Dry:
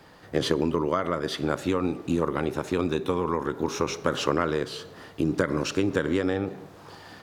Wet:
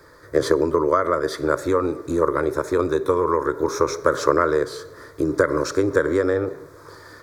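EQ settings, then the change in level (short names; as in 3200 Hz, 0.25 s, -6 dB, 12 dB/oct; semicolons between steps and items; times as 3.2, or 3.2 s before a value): dynamic EQ 740 Hz, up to +6 dB, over -40 dBFS, Q 1.2; fixed phaser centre 770 Hz, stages 6; +6.0 dB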